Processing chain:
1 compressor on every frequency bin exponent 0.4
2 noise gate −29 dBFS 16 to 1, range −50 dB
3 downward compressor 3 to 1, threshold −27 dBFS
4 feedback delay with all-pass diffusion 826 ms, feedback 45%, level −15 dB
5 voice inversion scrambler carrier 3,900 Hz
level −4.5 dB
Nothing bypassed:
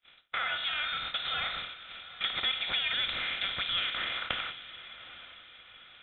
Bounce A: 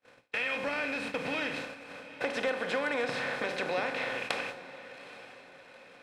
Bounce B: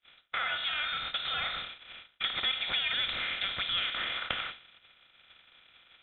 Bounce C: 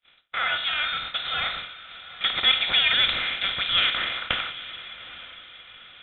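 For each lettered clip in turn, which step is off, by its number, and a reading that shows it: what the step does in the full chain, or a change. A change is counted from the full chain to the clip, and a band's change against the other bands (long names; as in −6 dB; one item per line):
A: 5, 4 kHz band −15.0 dB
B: 4, change in momentary loudness spread −8 LU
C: 3, average gain reduction 6.0 dB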